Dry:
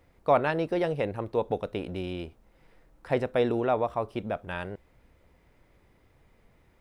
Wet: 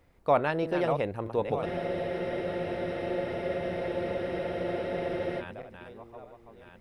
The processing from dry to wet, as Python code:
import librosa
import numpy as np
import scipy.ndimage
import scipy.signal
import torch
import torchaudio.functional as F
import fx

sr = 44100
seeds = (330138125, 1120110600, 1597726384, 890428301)

y = fx.reverse_delay_fb(x, sr, ms=625, feedback_pct=53, wet_db=-7.0)
y = fx.spec_freeze(y, sr, seeds[0], at_s=1.67, hold_s=3.74)
y = F.gain(torch.from_numpy(y), -1.5).numpy()